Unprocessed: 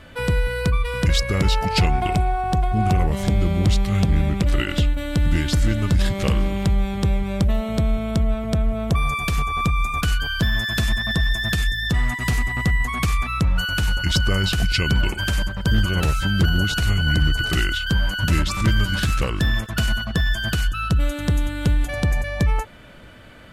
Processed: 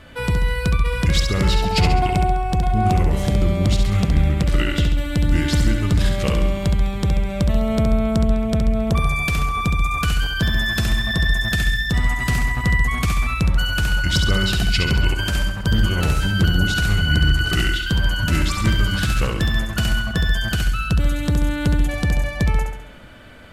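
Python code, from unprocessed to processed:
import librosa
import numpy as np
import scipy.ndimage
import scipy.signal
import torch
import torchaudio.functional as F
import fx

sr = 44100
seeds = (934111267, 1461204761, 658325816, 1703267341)

y = fx.echo_feedback(x, sr, ms=68, feedback_pct=49, wet_db=-5.5)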